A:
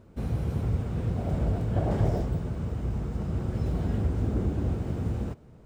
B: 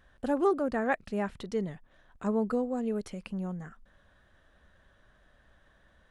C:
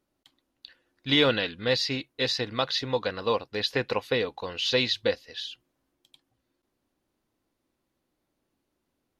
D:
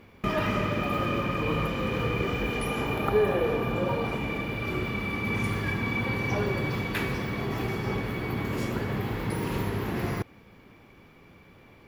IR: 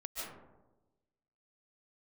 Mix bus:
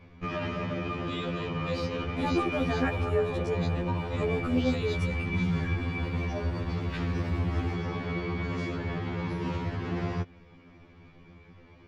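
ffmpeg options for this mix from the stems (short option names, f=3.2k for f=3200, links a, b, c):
-filter_complex "[0:a]alimiter=level_in=0.5dB:limit=-24dB:level=0:latency=1:release=73,volume=-0.5dB,adelay=2400,volume=-1.5dB[a];[1:a]adelay=1950,volume=1dB[b];[2:a]afwtdn=0.0112,volume=-11dB[c];[3:a]lowpass=f=6.2k:w=0.5412,lowpass=f=6.2k:w=1.3066,volume=-1dB[d];[a][c][d]amix=inputs=3:normalize=0,alimiter=limit=-22dB:level=0:latency=1:release=86,volume=0dB[e];[b][e]amix=inputs=2:normalize=0,lowshelf=f=200:g=7.5,afftfilt=real='re*2*eq(mod(b,4),0)':imag='im*2*eq(mod(b,4),0)':win_size=2048:overlap=0.75"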